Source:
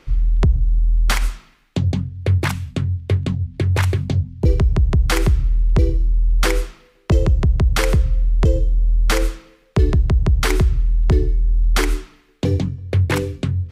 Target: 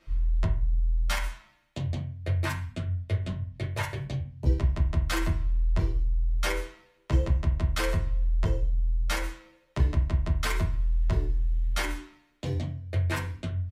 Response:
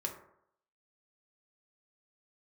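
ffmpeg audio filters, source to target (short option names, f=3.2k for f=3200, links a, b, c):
-filter_complex "[0:a]equalizer=f=260:w=0.83:g=-5.5,asettb=1/sr,asplit=3[a][b][c];[a]atrim=end=10.574[d];[b]atrim=start=10.57:end=11.79,asetpts=PTS-STARTPTS,afade=t=in:d=0.004:c=qsin,afade=t=out:st=1.216:d=0.004:c=qsin,aeval=exprs='val(0)*gte(abs(val(0)),0.00891)':c=same[e];[c]atrim=start=11.786[f];[d][e]acrossfade=d=0.004:c1=hsin:c2=qsin[g];[g][f]acrossfade=d=0.004:c1=qsin:c2=hsin[h];[1:a]atrim=start_sample=2205,asetrate=74970,aresample=44100[i];[h][i]afir=irnorm=-1:irlink=0,asplit=2[j][k];[k]adelay=9.1,afreqshift=0.38[l];[j][l]amix=inputs=2:normalize=1,volume=-2dB"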